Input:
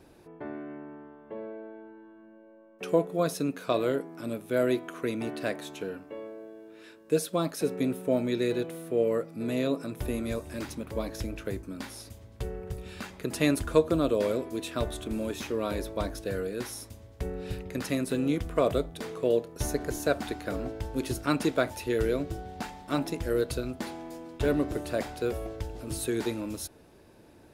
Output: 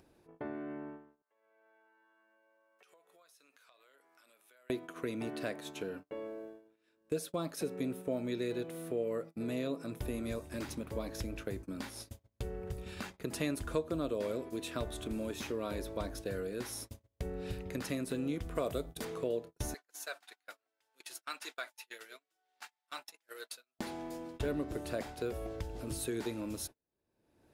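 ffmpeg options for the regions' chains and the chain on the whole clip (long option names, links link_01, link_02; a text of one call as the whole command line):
ffmpeg -i in.wav -filter_complex "[0:a]asettb=1/sr,asplit=3[link_01][link_02][link_03];[link_01]atrim=end=1.224[link_04];[link_02]atrim=start=1.22:end=4.7,asetpts=PTS-STARTPTS,afade=type=in:duration=0.004:curve=qsin,afade=type=out:start_time=3.476:duration=0.004:curve=qsin,highpass=1200,acompressor=threshold=-49dB:ratio=5:attack=3.2:release=140:knee=1:detection=peak[link_05];[link_03]atrim=start=4.696[link_06];[link_04][link_05]acrossfade=duration=0.004:curve1=hsin:curve2=qsin[link_07];[link_07][link_06]acrossfade=duration=0.004:curve1=qsin:curve2=hsin,asettb=1/sr,asplit=3[link_08][link_09][link_10];[link_08]atrim=end=18.554[link_11];[link_09]atrim=start=18.55:end=19.05,asetpts=PTS-STARTPTS,afade=type=in:duration=0.004:curve=qsin,afade=type=out:start_time=0.496:duration=0.004:curve=qsin,highshelf=frequency=7100:gain=11,aeval=exprs='val(0)+0.00282*(sin(2*PI*60*n/s)+sin(2*PI*2*60*n/s)/2+sin(2*PI*3*60*n/s)/3+sin(2*PI*4*60*n/s)/4+sin(2*PI*5*60*n/s)/5)':channel_layout=same[link_12];[link_10]atrim=start=19.046[link_13];[link_11][link_12]acrossfade=duration=0.004:curve1=hsin:curve2=qsin[link_14];[link_14][link_13]acrossfade=duration=0.004:curve1=qsin:curve2=hsin,asettb=1/sr,asplit=3[link_15][link_16][link_17];[link_15]atrim=end=19.744[link_18];[link_16]atrim=start=19.74:end=23.79,asetpts=PTS-STARTPTS,afade=type=in:duration=0.004:curve=qsin,afade=type=out:start_time=4.046:duration=0.004:curve=qsin,highpass=1300,flanger=delay=2.3:depth=3.7:regen=-47:speed=1.1:shape=triangular[link_19];[link_17]atrim=start=23.786[link_20];[link_18][link_19]acrossfade=duration=0.004:curve1=hsin:curve2=qsin[link_21];[link_21][link_20]acrossfade=duration=0.004:curve1=qsin:curve2=hsin,acompressor=threshold=-39dB:ratio=2,agate=range=-40dB:threshold=-44dB:ratio=16:detection=peak,acompressor=mode=upward:threshold=-43dB:ratio=2.5" out.wav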